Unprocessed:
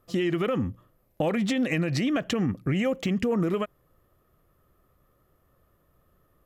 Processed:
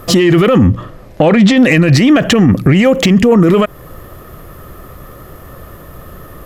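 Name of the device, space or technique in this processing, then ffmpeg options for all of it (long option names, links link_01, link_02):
mastering chain: -filter_complex "[0:a]equalizer=frequency=1800:width_type=o:width=0.22:gain=2,acompressor=threshold=-35dB:ratio=1.5,asoftclip=type=tanh:threshold=-20.5dB,alimiter=level_in=33.5dB:limit=-1dB:release=50:level=0:latency=1,asettb=1/sr,asplit=3[link_01][link_02][link_03];[link_01]atrim=end=0.664[link_04];[link_02]atrim=start=0.66:end=1.57,asetpts=PTS-STARTPTS,afade=type=in:duration=0.004:curve=qsin,afade=type=out:start_time=0.906:duration=0.004:curve=qsin,lowpass=6100[link_05];[link_03]atrim=start=1.566[link_06];[link_04][link_05]acrossfade=duration=0.004:curve1=hsin:curve2=qsin[link_07];[link_07][link_06]acrossfade=duration=0.004:curve1=qsin:curve2=hsin,volume=-1dB"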